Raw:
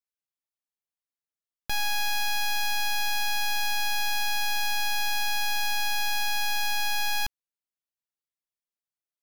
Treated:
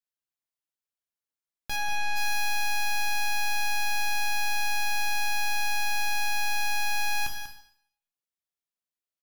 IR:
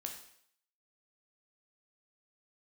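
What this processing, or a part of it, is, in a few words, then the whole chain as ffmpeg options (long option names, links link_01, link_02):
bathroom: -filter_complex "[0:a]asplit=3[link_01][link_02][link_03];[link_01]afade=type=out:start_time=1.75:duration=0.02[link_04];[link_02]aemphasis=mode=reproduction:type=50fm,afade=type=in:start_time=1.75:duration=0.02,afade=type=out:start_time=2.15:duration=0.02[link_05];[link_03]afade=type=in:start_time=2.15:duration=0.02[link_06];[link_04][link_05][link_06]amix=inputs=3:normalize=0,aecho=1:1:191:0.316[link_07];[1:a]atrim=start_sample=2205[link_08];[link_07][link_08]afir=irnorm=-1:irlink=0"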